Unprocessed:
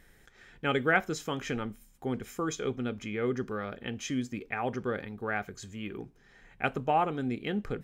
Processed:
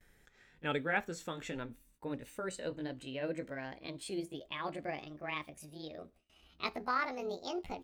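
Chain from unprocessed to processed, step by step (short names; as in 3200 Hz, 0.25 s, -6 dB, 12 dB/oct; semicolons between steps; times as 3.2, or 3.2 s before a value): gliding pitch shift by +10 st starting unshifted; gate with hold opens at -50 dBFS; gain -6 dB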